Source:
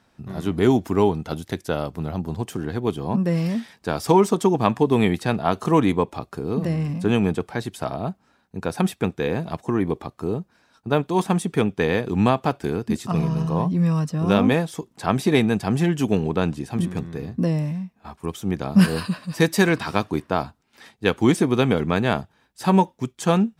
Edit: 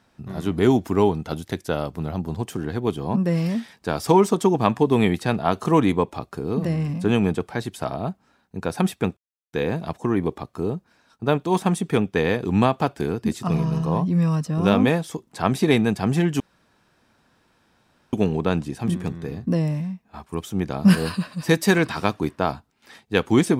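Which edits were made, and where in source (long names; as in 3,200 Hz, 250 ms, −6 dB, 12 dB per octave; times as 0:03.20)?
0:09.17: splice in silence 0.36 s
0:16.04: splice in room tone 1.73 s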